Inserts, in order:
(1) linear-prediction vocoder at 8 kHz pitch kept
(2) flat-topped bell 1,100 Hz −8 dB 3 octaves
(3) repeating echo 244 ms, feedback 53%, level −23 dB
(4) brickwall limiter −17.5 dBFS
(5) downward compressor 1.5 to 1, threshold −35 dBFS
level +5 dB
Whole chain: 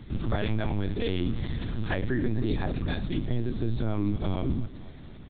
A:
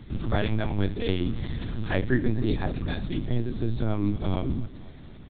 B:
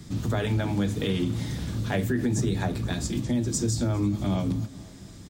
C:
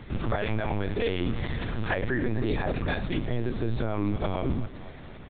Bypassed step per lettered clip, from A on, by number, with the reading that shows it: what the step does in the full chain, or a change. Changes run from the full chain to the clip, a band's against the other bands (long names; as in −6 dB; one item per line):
4, change in crest factor +4.0 dB
1, 4 kHz band +2.0 dB
2, 125 Hz band −4.5 dB